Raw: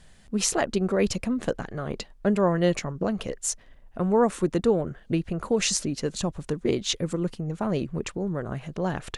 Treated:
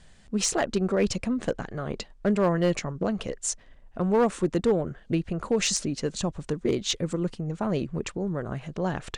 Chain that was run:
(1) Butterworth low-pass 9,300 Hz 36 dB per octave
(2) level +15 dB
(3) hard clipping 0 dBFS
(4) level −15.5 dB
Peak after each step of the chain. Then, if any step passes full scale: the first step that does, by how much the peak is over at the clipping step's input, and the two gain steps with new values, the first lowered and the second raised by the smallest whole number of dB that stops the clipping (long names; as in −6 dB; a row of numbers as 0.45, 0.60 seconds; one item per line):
−8.0, +7.0, 0.0, −15.5 dBFS
step 2, 7.0 dB
step 2 +8 dB, step 4 −8.5 dB